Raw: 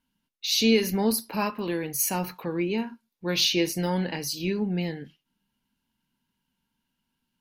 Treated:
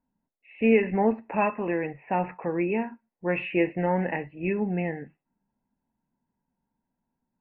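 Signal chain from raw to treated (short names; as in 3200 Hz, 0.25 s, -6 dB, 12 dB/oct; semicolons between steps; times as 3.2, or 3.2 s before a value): rippled Chebyshev low-pass 2700 Hz, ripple 9 dB; low-pass opened by the level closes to 920 Hz, open at -28 dBFS; gain +7.5 dB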